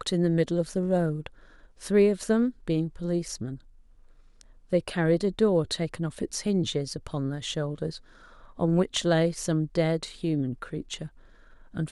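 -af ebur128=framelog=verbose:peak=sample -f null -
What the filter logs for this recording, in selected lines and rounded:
Integrated loudness:
  I:         -27.5 LUFS
  Threshold: -38.4 LUFS
Loudness range:
  LRA:         2.4 LU
  Threshold: -48.4 LUFS
  LRA low:   -29.6 LUFS
  LRA high:  -27.2 LUFS
Sample peak:
  Peak:      -11.4 dBFS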